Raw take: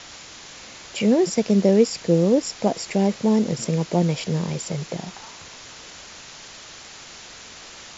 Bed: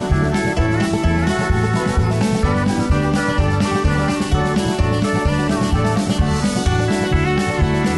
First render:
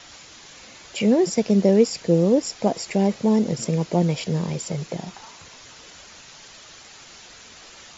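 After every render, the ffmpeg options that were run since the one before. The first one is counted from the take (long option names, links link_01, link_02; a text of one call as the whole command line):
ffmpeg -i in.wav -af "afftdn=noise_reduction=6:noise_floor=-42" out.wav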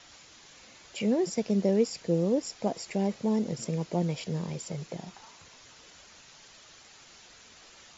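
ffmpeg -i in.wav -af "volume=-8.5dB" out.wav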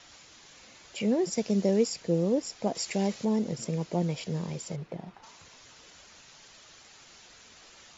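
ffmpeg -i in.wav -filter_complex "[0:a]asettb=1/sr,asplit=3[link_01][link_02][link_03];[link_01]atrim=end=1.324[link_04];[link_02]atrim=start=1.32:end=1.94,asetpts=PTS-STARTPTS,afade=type=in:duration=0.004:curve=qsin,afade=type=out:start_time=0.616:duration=0.004:curve=qsin,highshelf=frequency=5100:gain=7.5[link_05];[link_03]atrim=start=1.936[link_06];[link_04][link_05]acrossfade=duration=0.004:curve1=hsin:curve2=qsin[link_07];[link_07][link_06]acrossfade=duration=0.004:curve1=qsin:curve2=hsin,asettb=1/sr,asplit=3[link_08][link_09][link_10];[link_08]atrim=end=2.754[link_11];[link_09]atrim=start=2.75:end=3.25,asetpts=PTS-STARTPTS,afade=type=in:duration=0.004:curve=qsin,afade=type=out:start_time=0.496:duration=0.004:curve=qsin,highshelf=frequency=2100:gain=8.5[link_12];[link_10]atrim=start=3.246[link_13];[link_11][link_12]acrossfade=duration=0.004:curve1=hsin:curve2=qsin[link_14];[link_14][link_13]acrossfade=duration=0.004:curve1=qsin:curve2=hsin,asplit=3[link_15][link_16][link_17];[link_15]afade=type=out:start_time=4.75:duration=0.02[link_18];[link_16]adynamicsmooth=sensitivity=6:basefreq=2200,afade=type=in:start_time=4.75:duration=0.02,afade=type=out:start_time=5.22:duration=0.02[link_19];[link_17]afade=type=in:start_time=5.22:duration=0.02[link_20];[link_18][link_19][link_20]amix=inputs=3:normalize=0" out.wav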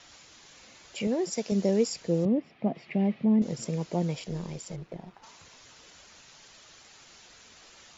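ffmpeg -i in.wav -filter_complex "[0:a]asettb=1/sr,asplit=3[link_01][link_02][link_03];[link_01]atrim=end=1.074[link_04];[link_02]atrim=start=1.07:end=1.52,asetpts=PTS-STARTPTS,afade=type=in:duration=0.004:curve=qsin,afade=type=out:start_time=0.446:duration=0.004:curve=qsin,highpass=frequency=260:poles=1[link_05];[link_03]atrim=start=1.516[link_06];[link_04][link_05]acrossfade=duration=0.004:curve1=hsin:curve2=qsin[link_07];[link_07][link_06]acrossfade=duration=0.004:curve1=qsin:curve2=hsin,asettb=1/sr,asplit=3[link_08][link_09][link_10];[link_08]atrim=end=2.254[link_11];[link_09]atrim=start=2.25:end=3.42,asetpts=PTS-STARTPTS,afade=type=in:duration=0.004:curve=qsin,afade=type=out:start_time=1.166:duration=0.004:curve=qsin,highpass=110,equalizer=frequency=150:width_type=q:width=4:gain=9,equalizer=frequency=230:width_type=q:width=4:gain=6,equalizer=frequency=490:width_type=q:width=4:gain=-7,equalizer=frequency=950:width_type=q:width=4:gain=-7,equalizer=frequency=1500:width_type=q:width=4:gain=-9,lowpass=frequency=2600:width=0.5412,lowpass=frequency=2600:width=1.3066[link_12];[link_10]atrim=start=3.416[link_13];[link_11][link_12]acrossfade=duration=0.004:curve1=hsin:curve2=qsin[link_14];[link_14][link_13]acrossfade=duration=0.004:curve1=qsin:curve2=hsin,asettb=1/sr,asplit=3[link_15][link_16][link_17];[link_15]atrim=end=4.194[link_18];[link_16]atrim=start=4.19:end=5.22,asetpts=PTS-STARTPTS,afade=type=in:duration=0.004:curve=qsin,afade=type=out:start_time=1.026:duration=0.004:curve=qsin,tremolo=f=190:d=0.519[link_19];[link_17]atrim=start=5.216[link_20];[link_18][link_19]acrossfade=duration=0.004:curve1=hsin:curve2=qsin[link_21];[link_21][link_20]acrossfade=duration=0.004:curve1=qsin:curve2=hsin" out.wav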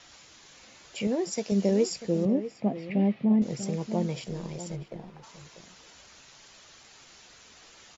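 ffmpeg -i in.wav -filter_complex "[0:a]asplit=2[link_01][link_02];[link_02]adelay=15,volume=-12.5dB[link_03];[link_01][link_03]amix=inputs=2:normalize=0,asplit=2[link_04][link_05];[link_05]adelay=641.4,volume=-12dB,highshelf=frequency=4000:gain=-14.4[link_06];[link_04][link_06]amix=inputs=2:normalize=0" out.wav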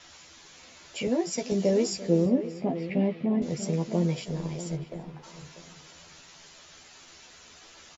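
ffmpeg -i in.wav -filter_complex "[0:a]asplit=2[link_01][link_02];[link_02]adelay=12,volume=-3dB[link_03];[link_01][link_03]amix=inputs=2:normalize=0,asplit=2[link_04][link_05];[link_05]adelay=342,lowpass=frequency=2700:poles=1,volume=-17dB,asplit=2[link_06][link_07];[link_07]adelay=342,lowpass=frequency=2700:poles=1,volume=0.53,asplit=2[link_08][link_09];[link_09]adelay=342,lowpass=frequency=2700:poles=1,volume=0.53,asplit=2[link_10][link_11];[link_11]adelay=342,lowpass=frequency=2700:poles=1,volume=0.53,asplit=2[link_12][link_13];[link_13]adelay=342,lowpass=frequency=2700:poles=1,volume=0.53[link_14];[link_04][link_06][link_08][link_10][link_12][link_14]amix=inputs=6:normalize=0" out.wav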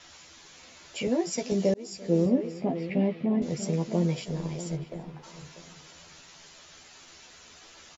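ffmpeg -i in.wav -filter_complex "[0:a]asplit=2[link_01][link_02];[link_01]atrim=end=1.74,asetpts=PTS-STARTPTS,afade=type=out:start_time=1.736:duration=0.004:curve=hsin[link_03];[link_02]atrim=start=1.74,asetpts=PTS-STARTPTS,afade=type=in:duration=0.46[link_04];[link_03][link_04]concat=n=2:v=0:a=1" out.wav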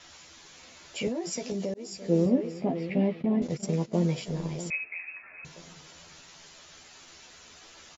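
ffmpeg -i in.wav -filter_complex "[0:a]asettb=1/sr,asplit=3[link_01][link_02][link_03];[link_01]atrim=end=1.084[link_04];[link_02]atrim=start=1.08:end=1.95,asetpts=PTS-STARTPTS,afade=type=in:duration=0.004:curve=qsin,afade=type=out:start_time=0.866:duration=0.004:curve=qsin,acompressor=threshold=-28dB:ratio=6:attack=3.2:release=140:knee=1:detection=peak[link_05];[link_03]atrim=start=1.946[link_06];[link_04][link_05]acrossfade=duration=0.004:curve1=hsin:curve2=qsin[link_07];[link_07][link_06]acrossfade=duration=0.004:curve1=qsin:curve2=hsin,asplit=3[link_08][link_09][link_10];[link_08]afade=type=out:start_time=3.21:duration=0.02[link_11];[link_09]agate=range=-14dB:threshold=-34dB:ratio=16:release=100:detection=peak,afade=type=in:start_time=3.21:duration=0.02,afade=type=out:start_time=4.01:duration=0.02[link_12];[link_10]afade=type=in:start_time=4.01:duration=0.02[link_13];[link_11][link_12][link_13]amix=inputs=3:normalize=0,asettb=1/sr,asplit=3[link_14][link_15][link_16];[link_14]atrim=end=4.704[link_17];[link_15]atrim=start=4.7:end=5.45,asetpts=PTS-STARTPTS,afade=type=in:duration=0.004:curve=qsin,afade=type=out:start_time=0.746:duration=0.004:curve=qsin,lowpass=frequency=2300:width_type=q:width=0.5098,lowpass=frequency=2300:width_type=q:width=0.6013,lowpass=frequency=2300:width_type=q:width=0.9,lowpass=frequency=2300:width_type=q:width=2.563,afreqshift=-2700[link_18];[link_16]atrim=start=5.446[link_19];[link_17][link_18]acrossfade=duration=0.004:curve1=hsin:curve2=qsin[link_20];[link_20][link_19]acrossfade=duration=0.004:curve1=qsin:curve2=hsin" out.wav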